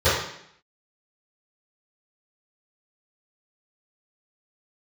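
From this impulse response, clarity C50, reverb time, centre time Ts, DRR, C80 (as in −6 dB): 2.0 dB, 0.70 s, 56 ms, −18.0 dB, 5.5 dB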